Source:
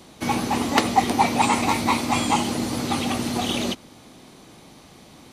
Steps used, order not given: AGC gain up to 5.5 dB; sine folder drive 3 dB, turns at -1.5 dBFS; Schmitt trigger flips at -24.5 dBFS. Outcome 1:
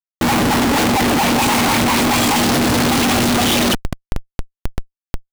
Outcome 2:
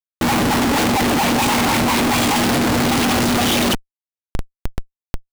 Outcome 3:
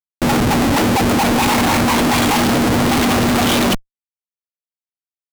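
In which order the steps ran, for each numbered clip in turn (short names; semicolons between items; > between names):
AGC > sine folder > Schmitt trigger; sine folder > AGC > Schmitt trigger; AGC > Schmitt trigger > sine folder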